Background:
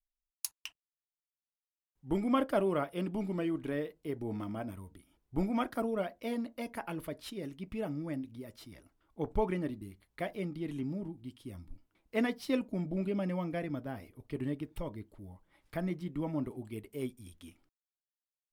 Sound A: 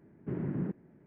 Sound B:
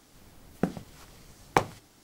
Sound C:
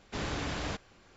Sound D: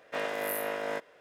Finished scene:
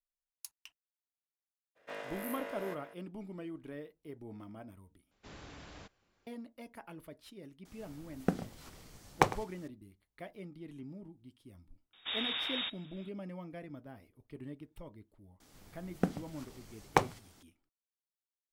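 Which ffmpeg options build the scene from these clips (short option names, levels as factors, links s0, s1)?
-filter_complex "[3:a]asplit=2[s0][s1];[2:a]asplit=2[s2][s3];[0:a]volume=0.316[s4];[4:a]asplit=2[s5][s6];[s6]adelay=379,volume=0.355,highshelf=f=4000:g=-8.53[s7];[s5][s7]amix=inputs=2:normalize=0[s8];[s2]asplit=2[s9][s10];[s10]adelay=105,volume=0.158,highshelf=f=4000:g=-2.36[s11];[s9][s11]amix=inputs=2:normalize=0[s12];[s1]lowpass=f=3200:t=q:w=0.5098,lowpass=f=3200:t=q:w=0.6013,lowpass=f=3200:t=q:w=0.9,lowpass=f=3200:t=q:w=2.563,afreqshift=-3800[s13];[s4]asplit=2[s14][s15];[s14]atrim=end=5.114[s16];[s0]atrim=end=1.16,asetpts=PTS-STARTPTS,volume=0.158[s17];[s15]atrim=start=6.266[s18];[s8]atrim=end=1.2,asetpts=PTS-STARTPTS,volume=0.299,afade=t=in:d=0.02,afade=t=out:st=1.18:d=0.02,adelay=1750[s19];[s12]atrim=end=2.03,asetpts=PTS-STARTPTS,volume=0.708,afade=t=in:d=0.004:c=hsin,afade=t=out:st=2.026:d=0.004:c=hsin,adelay=7650[s20];[s13]atrim=end=1.16,asetpts=PTS-STARTPTS,volume=0.841,afade=t=in:d=0.004:c=hsin,afade=t=out:st=1.156:d=0.004:c=hsin,adelay=11930[s21];[s3]atrim=end=2.03,asetpts=PTS-STARTPTS,volume=0.668,afade=t=in:d=0.004:c=hsin,afade=t=out:st=2.026:d=0.004:c=hsin,adelay=679140S[s22];[s16][s17]acrossfade=d=0.004:c1=hsin:c2=hsin[s23];[s23][s18]acrossfade=d=0.004:c1=hsin:c2=hsin[s24];[s24][s19][s20][s21][s22]amix=inputs=5:normalize=0"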